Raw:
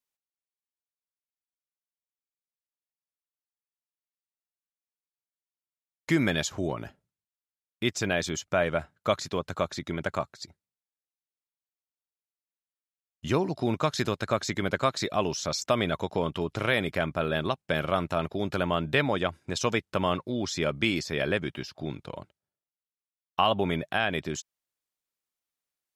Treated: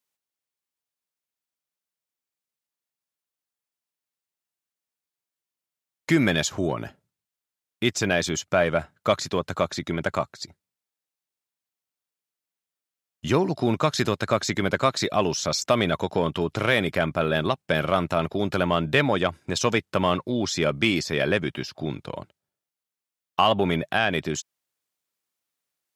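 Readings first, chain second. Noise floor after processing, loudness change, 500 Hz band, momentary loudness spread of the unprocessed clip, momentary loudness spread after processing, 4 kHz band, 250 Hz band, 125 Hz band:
under -85 dBFS, +4.5 dB, +4.5 dB, 11 LU, 10 LU, +4.5 dB, +4.5 dB, +4.5 dB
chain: in parallel at -5 dB: saturation -21 dBFS, distortion -12 dB; on the sum: high-pass 75 Hz; trim +1.5 dB

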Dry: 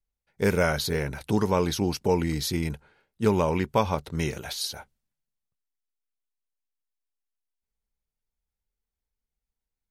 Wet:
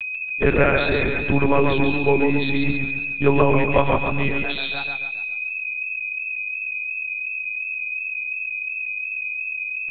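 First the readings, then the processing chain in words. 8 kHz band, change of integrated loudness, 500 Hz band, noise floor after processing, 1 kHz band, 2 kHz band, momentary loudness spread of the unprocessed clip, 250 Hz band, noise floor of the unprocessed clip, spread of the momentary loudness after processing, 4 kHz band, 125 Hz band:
under -40 dB, +5.0 dB, +6.5 dB, -30 dBFS, +6.0 dB, +15.5 dB, 7 LU, +5.5 dB, under -85 dBFS, 7 LU, +2.5 dB, +4.5 dB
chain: knee-point frequency compression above 3.1 kHz 1.5:1; whistle 2.5 kHz -31 dBFS; monotone LPC vocoder at 8 kHz 140 Hz; modulated delay 137 ms, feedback 44%, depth 72 cents, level -4.5 dB; trim +5 dB

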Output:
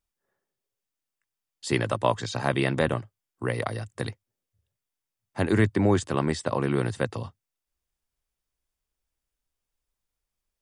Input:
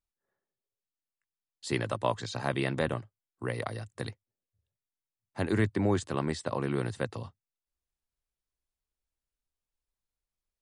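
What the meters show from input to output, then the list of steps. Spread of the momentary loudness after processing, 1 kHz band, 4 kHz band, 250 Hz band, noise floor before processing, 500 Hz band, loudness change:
12 LU, +5.5 dB, +5.0 dB, +5.5 dB, under -85 dBFS, +5.5 dB, +5.5 dB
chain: band-stop 4.1 kHz, Q 16; trim +5.5 dB

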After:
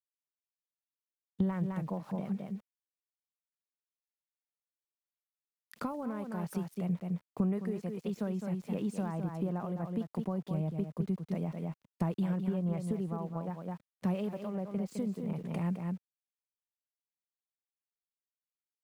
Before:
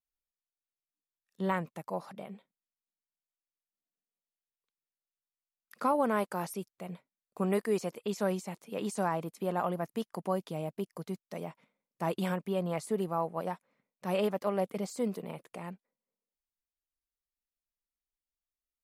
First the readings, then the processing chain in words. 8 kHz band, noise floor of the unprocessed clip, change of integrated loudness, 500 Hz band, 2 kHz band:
no reading, under -85 dBFS, -1.5 dB, -7.0 dB, -9.5 dB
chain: in parallel at 0 dB: peak limiter -25 dBFS, peak gain reduction 7 dB; on the sum: bass shelf 290 Hz +7 dB; on a send: delay 210 ms -7.5 dB; on the sum: compression 12:1, threshold -36 dBFS, peak gain reduction 19 dB; tone controls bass +10 dB, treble -7 dB; small samples zeroed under -55 dBFS; three bands expanded up and down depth 70%

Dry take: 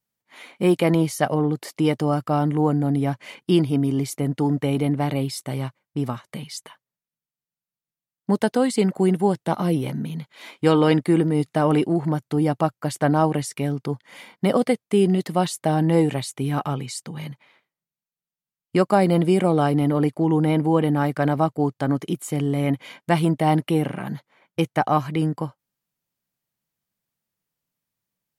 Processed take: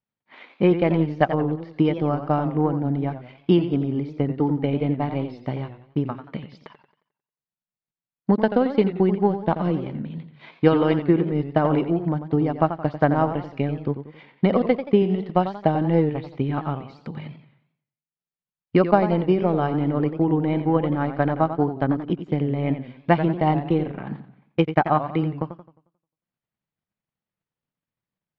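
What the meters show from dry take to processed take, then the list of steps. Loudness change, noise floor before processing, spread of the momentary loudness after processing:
-0.5 dB, under -85 dBFS, 11 LU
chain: Bessel low-pass 2.6 kHz, order 8; transient shaper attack +7 dB, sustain -8 dB; modulated delay 89 ms, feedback 41%, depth 144 cents, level -10.5 dB; trim -3 dB

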